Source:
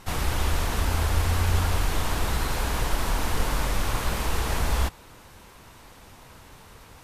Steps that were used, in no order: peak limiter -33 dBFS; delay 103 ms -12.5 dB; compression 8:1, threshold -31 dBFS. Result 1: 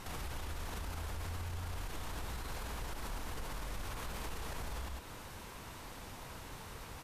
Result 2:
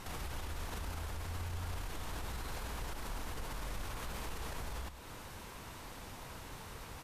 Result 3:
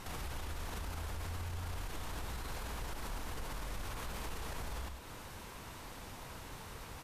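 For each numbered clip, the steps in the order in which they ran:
delay > compression > peak limiter; compression > peak limiter > delay; compression > delay > peak limiter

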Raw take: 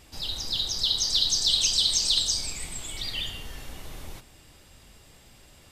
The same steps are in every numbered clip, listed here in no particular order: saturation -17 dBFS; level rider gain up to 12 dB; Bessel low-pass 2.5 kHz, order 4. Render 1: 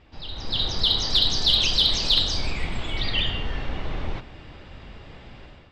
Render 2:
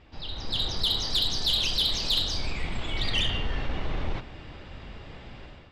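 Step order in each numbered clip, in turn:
Bessel low-pass > saturation > level rider; level rider > Bessel low-pass > saturation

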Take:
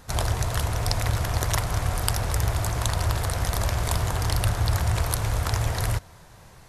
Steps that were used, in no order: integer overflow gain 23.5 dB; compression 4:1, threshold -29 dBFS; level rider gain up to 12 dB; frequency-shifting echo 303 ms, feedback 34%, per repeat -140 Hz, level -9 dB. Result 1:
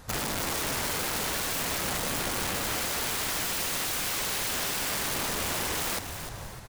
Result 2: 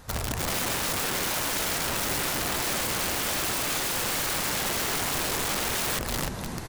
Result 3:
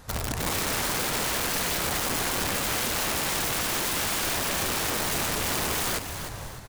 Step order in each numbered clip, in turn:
level rider > integer overflow > compression > frequency-shifting echo; compression > frequency-shifting echo > level rider > integer overflow; compression > level rider > integer overflow > frequency-shifting echo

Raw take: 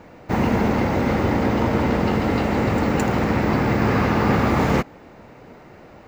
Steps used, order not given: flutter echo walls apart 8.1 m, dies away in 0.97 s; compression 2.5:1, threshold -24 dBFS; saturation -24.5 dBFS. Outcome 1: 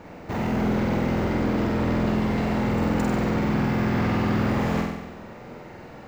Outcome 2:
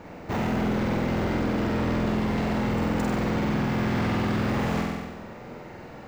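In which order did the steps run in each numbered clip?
compression > saturation > flutter echo; saturation > flutter echo > compression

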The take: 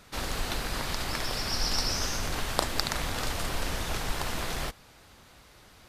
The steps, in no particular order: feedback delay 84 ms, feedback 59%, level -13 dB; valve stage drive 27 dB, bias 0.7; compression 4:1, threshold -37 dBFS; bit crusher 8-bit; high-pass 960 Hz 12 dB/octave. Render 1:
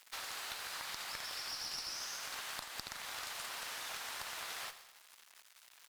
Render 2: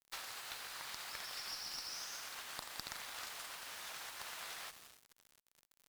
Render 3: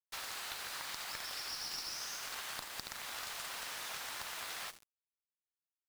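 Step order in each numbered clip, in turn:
bit crusher > high-pass > compression > valve stage > feedback delay; feedback delay > compression > high-pass > bit crusher > valve stage; high-pass > compression > valve stage > feedback delay > bit crusher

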